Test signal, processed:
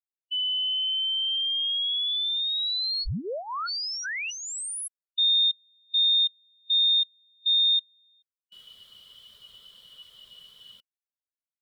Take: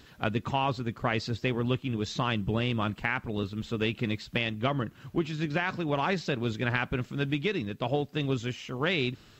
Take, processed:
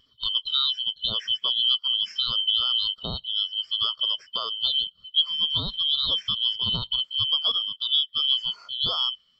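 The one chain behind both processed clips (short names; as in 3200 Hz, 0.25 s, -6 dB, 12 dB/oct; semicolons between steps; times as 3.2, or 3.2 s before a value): four-band scrambler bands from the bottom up 2413; in parallel at -1.5 dB: limiter -20.5 dBFS; on the sum: thirty-one-band EQ 315 Hz -11 dB, 800 Hz -9 dB, 6300 Hz -4 dB; spectral expander 1.5:1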